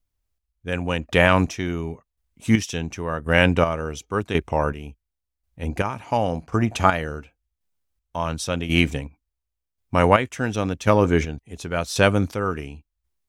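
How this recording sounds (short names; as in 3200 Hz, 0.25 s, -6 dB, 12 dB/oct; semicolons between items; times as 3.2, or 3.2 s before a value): chopped level 0.92 Hz, depth 60%, duty 35%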